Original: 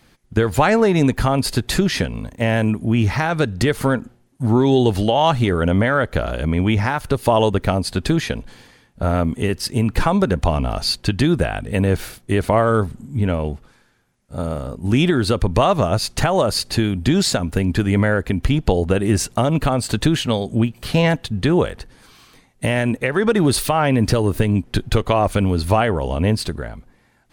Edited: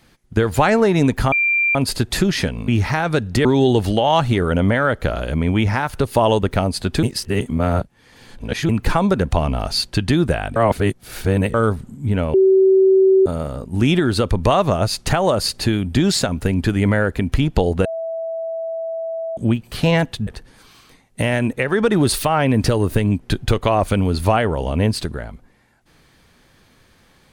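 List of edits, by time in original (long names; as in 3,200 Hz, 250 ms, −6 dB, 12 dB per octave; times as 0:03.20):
0:01.32: insert tone 2,370 Hz −14 dBFS 0.43 s
0:02.25–0:02.94: remove
0:03.71–0:04.56: remove
0:08.14–0:09.80: reverse
0:11.67–0:12.65: reverse
0:13.45–0:14.37: beep over 382 Hz −9 dBFS
0:18.96–0:20.48: beep over 656 Hz −22.5 dBFS
0:21.38–0:21.71: remove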